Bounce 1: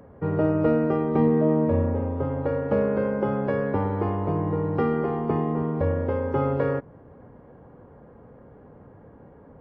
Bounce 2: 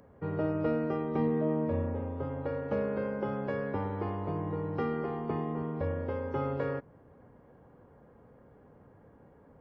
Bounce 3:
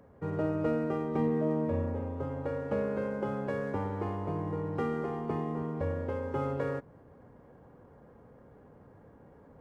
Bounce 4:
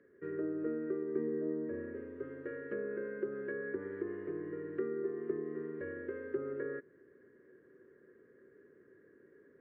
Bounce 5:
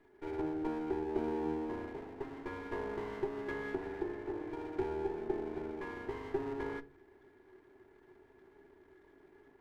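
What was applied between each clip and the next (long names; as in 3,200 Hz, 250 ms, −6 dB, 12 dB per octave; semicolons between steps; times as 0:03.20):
high-shelf EQ 2,400 Hz +9 dB; level −9 dB
running median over 9 samples; reversed playback; upward compression, threshold −50 dBFS; reversed playback
pair of resonant band-passes 810 Hz, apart 2.2 octaves; treble cut that deepens with the level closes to 1,100 Hz, closed at −39 dBFS; level +5.5 dB
lower of the sound and its delayed copy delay 2.9 ms; convolution reverb RT60 0.35 s, pre-delay 8 ms, DRR 13 dB; level +1 dB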